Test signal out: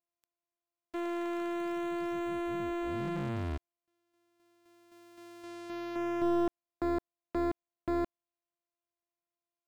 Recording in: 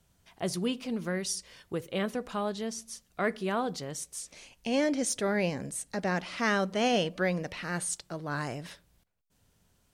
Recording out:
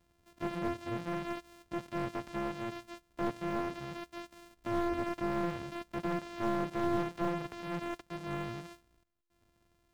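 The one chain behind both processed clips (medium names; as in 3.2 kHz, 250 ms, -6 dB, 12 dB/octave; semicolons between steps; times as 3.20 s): sorted samples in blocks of 128 samples; slew-rate limiter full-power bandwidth 67 Hz; trim -3.5 dB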